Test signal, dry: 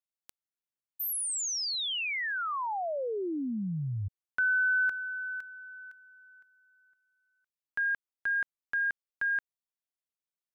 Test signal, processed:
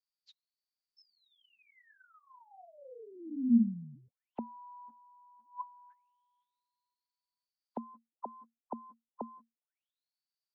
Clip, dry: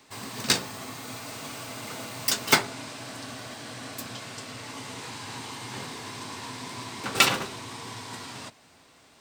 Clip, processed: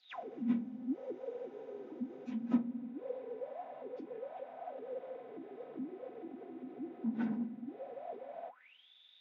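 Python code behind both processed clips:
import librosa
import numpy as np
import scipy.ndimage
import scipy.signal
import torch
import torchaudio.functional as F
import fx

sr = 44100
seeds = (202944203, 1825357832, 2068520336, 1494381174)

y = fx.partial_stretch(x, sr, pct=76)
y = fx.high_shelf(y, sr, hz=3900.0, db=-6.0)
y = fx.notch(y, sr, hz=1200.0, q=14.0)
y = y + 0.46 * np.pad(y, (int(4.0 * sr / 1000.0), 0))[:len(y)]
y = fx.auto_wah(y, sr, base_hz=230.0, top_hz=4700.0, q=20.0, full_db=-34.0, direction='down')
y = F.gain(torch.from_numpy(y), 12.5).numpy()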